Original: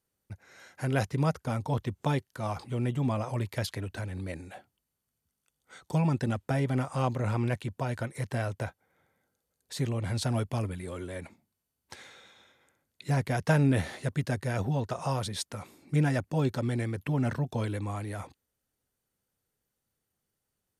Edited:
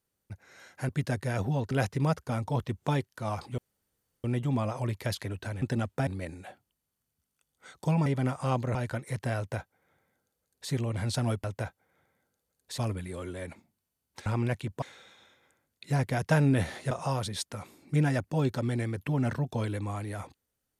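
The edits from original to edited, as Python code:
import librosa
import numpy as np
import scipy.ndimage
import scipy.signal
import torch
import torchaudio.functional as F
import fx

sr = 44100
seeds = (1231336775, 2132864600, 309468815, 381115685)

y = fx.edit(x, sr, fx.insert_room_tone(at_s=2.76, length_s=0.66),
    fx.move(start_s=6.13, length_s=0.45, to_s=4.14),
    fx.move(start_s=7.27, length_s=0.56, to_s=12.0),
    fx.duplicate(start_s=8.45, length_s=1.34, to_s=10.52),
    fx.move(start_s=14.09, length_s=0.82, to_s=0.89), tone=tone)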